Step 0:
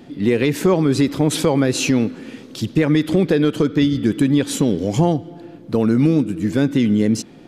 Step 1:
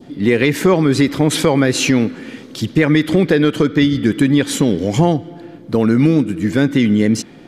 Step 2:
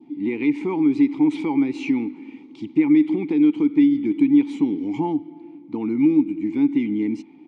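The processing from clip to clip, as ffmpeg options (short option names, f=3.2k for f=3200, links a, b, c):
-af "bandreject=f=2.6k:w=16,adynamicequalizer=threshold=0.00891:dfrequency=2000:dqfactor=1.1:tfrequency=2000:tqfactor=1.1:attack=5:release=100:ratio=0.375:range=3:mode=boostabove:tftype=bell,volume=2.5dB"
-filter_complex "[0:a]asplit=3[a][b][c];[a]bandpass=f=300:t=q:w=8,volume=0dB[d];[b]bandpass=f=870:t=q:w=8,volume=-6dB[e];[c]bandpass=f=2.24k:t=q:w=8,volume=-9dB[f];[d][e][f]amix=inputs=3:normalize=0,aresample=22050,aresample=44100,volume=1dB"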